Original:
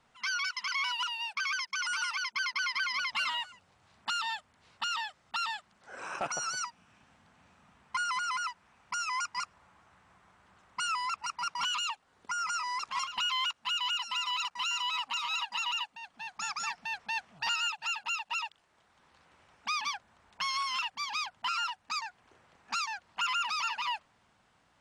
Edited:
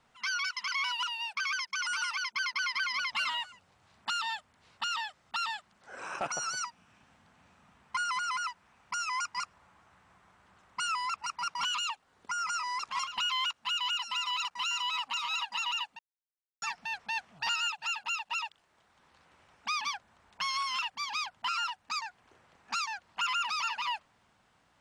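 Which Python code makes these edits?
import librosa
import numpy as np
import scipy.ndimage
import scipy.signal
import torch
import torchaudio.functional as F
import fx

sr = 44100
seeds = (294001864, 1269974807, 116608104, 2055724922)

y = fx.edit(x, sr, fx.silence(start_s=15.99, length_s=0.63), tone=tone)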